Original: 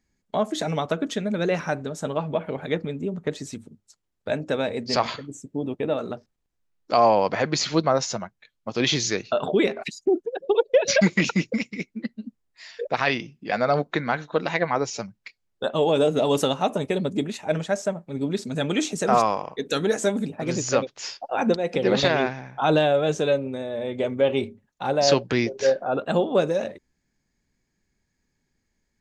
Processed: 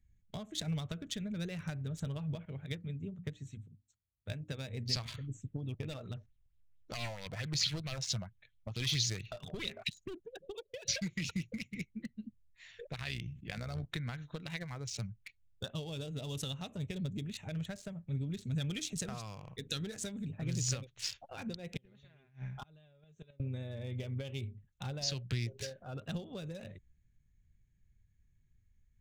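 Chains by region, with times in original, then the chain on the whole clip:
2.45–4.73 HPF 53 Hz + notches 60/120/180/240/300 Hz + upward expander, over -35 dBFS
5.34–10.36 high shelf 9300 Hz -8.5 dB + hard clip -17.5 dBFS + LFO bell 4.5 Hz 600–3900 Hz +11 dB
12.96–13.85 AM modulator 63 Hz, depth 35% + sustainer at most 110 dB/s
21.74–23.4 flipped gate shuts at -14 dBFS, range -33 dB + comb 4.9 ms, depth 41%
whole clip: Wiener smoothing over 9 samples; compressor 6:1, threshold -28 dBFS; EQ curve 110 Hz 0 dB, 260 Hz -22 dB, 870 Hz -28 dB, 3900 Hz -8 dB; gain +9 dB

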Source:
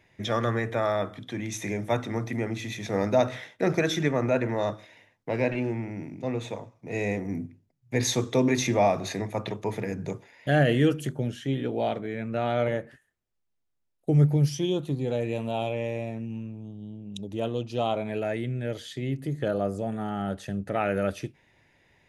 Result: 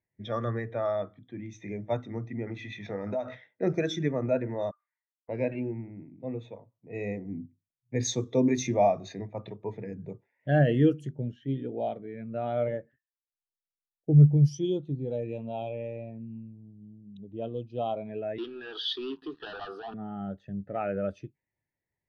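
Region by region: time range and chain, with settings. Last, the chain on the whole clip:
2.47–3.35 bell 1400 Hz +7 dB 2.5 oct + compressor 10:1, threshold -23 dBFS + doubler 20 ms -11 dB
4.71–5.29 ladder band-pass 1300 Hz, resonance 70% + comb 6.7 ms, depth 53%
18.38–19.94 HPF 400 Hz 24 dB/oct + sample leveller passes 5 + fixed phaser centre 2100 Hz, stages 6
whole clip: low-pass opened by the level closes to 2200 Hz, open at -19.5 dBFS; dynamic EQ 5800 Hz, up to +4 dB, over -50 dBFS, Q 0.94; spectral expander 1.5:1; gain +1 dB

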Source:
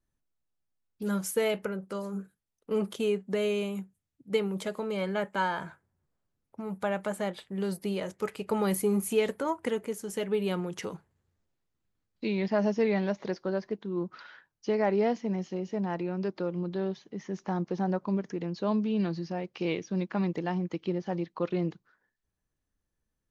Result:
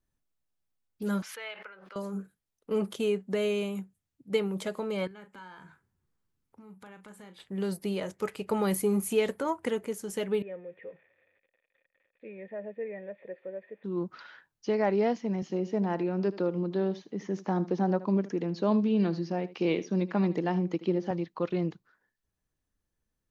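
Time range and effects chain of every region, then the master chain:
1.22–1.96 HPF 1400 Hz + air absorption 300 m + backwards sustainer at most 44 dB/s
5.07–7.4 bell 620 Hz -11 dB 0.47 oct + compressor 2.5:1, threshold -54 dBFS + doubler 38 ms -10.5 dB
10.42–13.84 switching spikes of -28 dBFS + vocal tract filter e
15.42–21.11 HPF 210 Hz + low shelf 460 Hz +7 dB + echo 77 ms -16.5 dB
whole clip: dry

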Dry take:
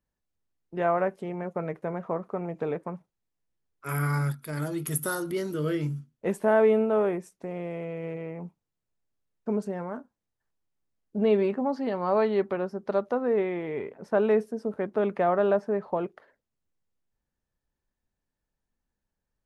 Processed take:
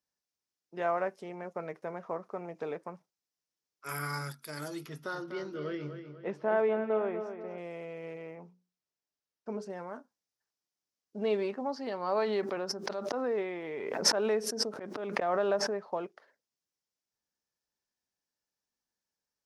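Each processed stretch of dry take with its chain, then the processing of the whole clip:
4.86–7.58 air absorption 270 m + darkening echo 0.246 s, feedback 44%, low-pass 4200 Hz, level -8.5 dB
8.35–9.7 high shelf 7000 Hz -11.5 dB + notches 60/120/180/240/300/360/420/480/540 Hz
12.17–15.76 auto swell 0.199 s + backwards sustainer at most 22 dB/s
whole clip: HPF 430 Hz 6 dB/oct; bell 5400 Hz +11.5 dB 0.75 oct; gain -4 dB

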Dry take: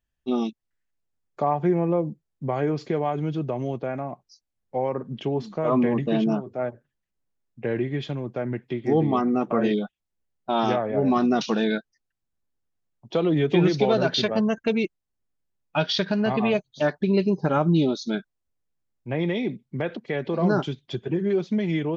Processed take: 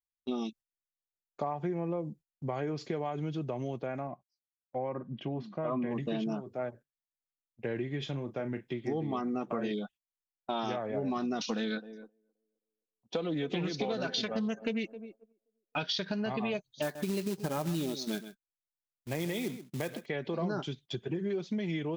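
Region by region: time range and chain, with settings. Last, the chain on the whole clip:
4.07–5.91 LPF 2800 Hz + notch comb 440 Hz
7.98–8.72 notch 4400 Hz + doubler 36 ms -10.5 dB
11.39–15.83 comb 4 ms, depth 45% + narrowing echo 0.263 s, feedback 41%, band-pass 430 Hz, level -17 dB + Doppler distortion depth 0.13 ms
16.82–20.06 notch 1400 Hz, Q 8.8 + short-mantissa float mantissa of 2-bit + echo 0.13 s -14.5 dB
whole clip: gate -43 dBFS, range -19 dB; high shelf 3100 Hz +7.5 dB; compressor, threshold -23 dBFS; gain -6.5 dB

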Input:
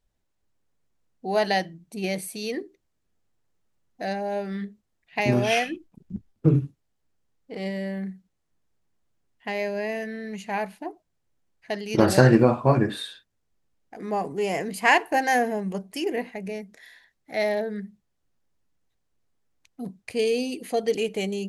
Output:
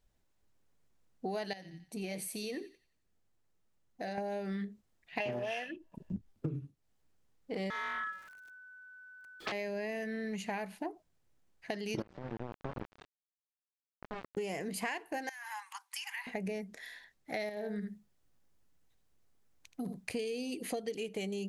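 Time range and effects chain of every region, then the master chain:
1.53–4.18 flange 1.2 Hz, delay 0.1 ms, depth 6.7 ms, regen -77% + compressor 3:1, threshold -37 dBFS + thin delay 89 ms, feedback 39%, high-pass 1700 Hz, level -13 dB
5.2–6.15 small resonant body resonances 620/940/1700/2700 Hz, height 15 dB, ringing for 25 ms + Doppler distortion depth 0.25 ms
7.7–9.52 zero-crossing step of -47 dBFS + ring modulator 1500 Hz + Doppler distortion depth 0.42 ms
12.02–14.37 compressor 4:1, threshold -32 dBFS + sample gate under -29 dBFS + tape spacing loss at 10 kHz 37 dB
15.29–16.27 steep high-pass 860 Hz 96 dB/oct + compressor 8:1, threshold -37 dBFS
17.49–20.1 high shelf 10000 Hz +5 dB + echo 77 ms -10.5 dB + compressor 2.5:1, threshold -33 dBFS
whole clip: dynamic EQ 840 Hz, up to -4 dB, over -31 dBFS, Q 0.94; compressor 16:1, threshold -35 dBFS; gain +1 dB

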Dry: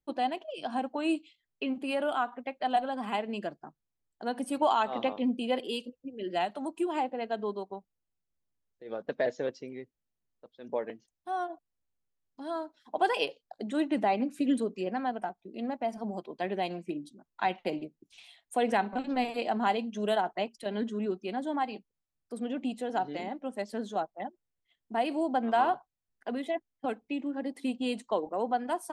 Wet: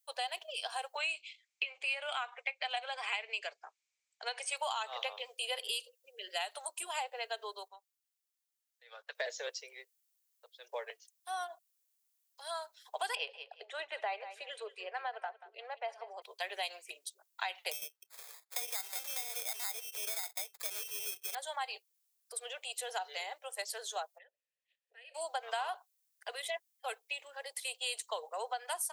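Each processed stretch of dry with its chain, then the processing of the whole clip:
0.97–4.57 steep low-pass 7600 Hz + bell 2300 Hz +13.5 dB 0.39 oct
7.68–9.15 HPF 1200 Hz + tilt -2.5 dB/oct
13.15–16.22 LPF 2400 Hz + feedback echo 0.184 s, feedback 25%, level -16 dB
17.71–21.35 LPF 7200 Hz + sample-rate reducer 2900 Hz + compressor 2.5:1, threshold -35 dBFS
24.17–25.14 spectral limiter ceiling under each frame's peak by 18 dB + compressor 2:1, threshold -55 dBFS + vowel filter e
whole clip: steep high-pass 420 Hz 72 dB/oct; differentiator; compressor 6:1, threshold -47 dBFS; gain +14 dB

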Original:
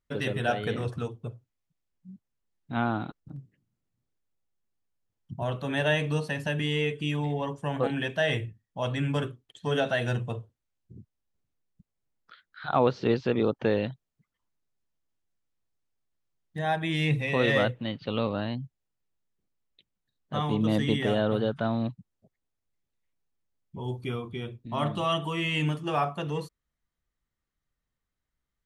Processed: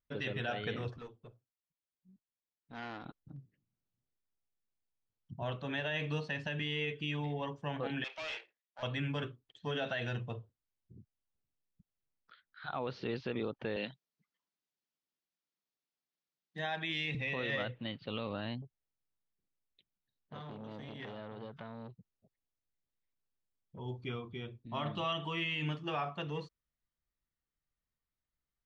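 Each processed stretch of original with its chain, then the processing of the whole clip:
0.97–3.06 low shelf 190 Hz -11 dB + tube stage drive 31 dB, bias 0.65
8.04–8.83 minimum comb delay 0.33 ms + HPF 590 Hz 24 dB/oct + overloaded stage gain 34 dB
13.76–17.15 HPF 160 Hz 24 dB/oct + high shelf 2700 Hz +8.5 dB
18.62–23.79 compressor 12:1, threshold -30 dBFS + core saturation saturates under 1000 Hz
whole clip: LPF 5600 Hz 24 dB/oct; dynamic EQ 2600 Hz, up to +6 dB, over -43 dBFS, Q 0.71; limiter -18.5 dBFS; gain -8 dB

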